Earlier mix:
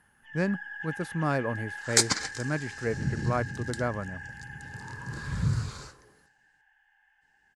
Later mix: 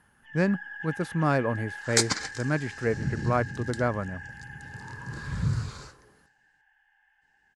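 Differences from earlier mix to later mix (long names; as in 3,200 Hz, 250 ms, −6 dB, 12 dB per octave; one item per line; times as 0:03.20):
speech +3.5 dB
master: add high-shelf EQ 9,500 Hz −7 dB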